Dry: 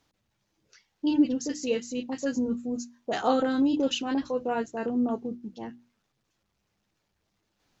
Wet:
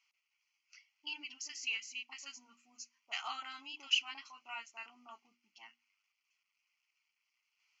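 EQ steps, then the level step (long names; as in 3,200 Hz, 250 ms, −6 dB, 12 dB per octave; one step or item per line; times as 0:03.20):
four-pole ladder band-pass 2,800 Hz, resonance 35%
phaser with its sweep stopped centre 2,500 Hz, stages 8
+12.5 dB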